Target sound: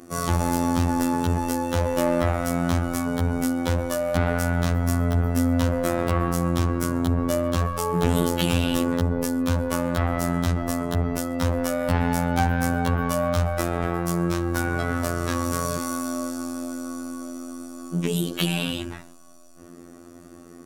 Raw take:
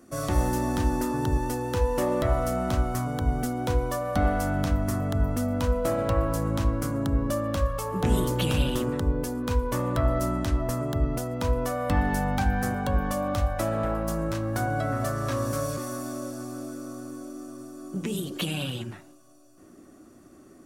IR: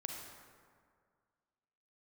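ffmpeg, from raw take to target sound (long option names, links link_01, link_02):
-af "aeval=exprs='0.237*(cos(1*acos(clip(val(0)/0.237,-1,1)))-cos(1*PI/2))+0.0473*(cos(5*acos(clip(val(0)/0.237,-1,1)))-cos(5*PI/2))':channel_layout=same,afftfilt=real='hypot(re,im)*cos(PI*b)':imag='0':win_size=2048:overlap=0.75,volume=4dB"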